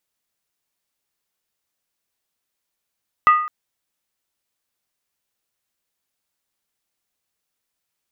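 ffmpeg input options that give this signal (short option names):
-f lavfi -i "aevalsrc='0.447*pow(10,-3*t/0.61)*sin(2*PI*1230*t)+0.141*pow(10,-3*t/0.483)*sin(2*PI*1960.6*t)+0.0447*pow(10,-3*t/0.417)*sin(2*PI*2627.3*t)+0.0141*pow(10,-3*t/0.403)*sin(2*PI*2824.1*t)+0.00447*pow(10,-3*t/0.375)*sin(2*PI*3263.2*t)':d=0.21:s=44100"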